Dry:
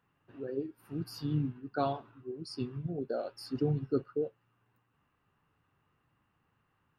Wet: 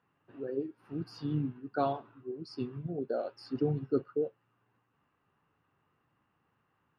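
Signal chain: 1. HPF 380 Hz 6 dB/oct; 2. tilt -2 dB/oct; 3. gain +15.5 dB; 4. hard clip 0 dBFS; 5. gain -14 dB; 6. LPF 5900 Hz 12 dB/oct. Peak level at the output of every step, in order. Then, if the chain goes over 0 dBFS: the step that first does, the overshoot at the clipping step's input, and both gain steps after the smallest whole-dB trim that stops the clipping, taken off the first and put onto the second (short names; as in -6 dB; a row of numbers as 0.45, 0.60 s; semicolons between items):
-19.0, -18.0, -2.5, -2.5, -16.5, -16.5 dBFS; no overload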